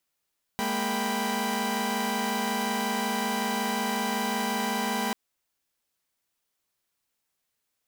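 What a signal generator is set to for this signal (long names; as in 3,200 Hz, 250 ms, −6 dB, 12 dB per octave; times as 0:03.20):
held notes G#3/A#3/G5/B5 saw, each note −29.5 dBFS 4.54 s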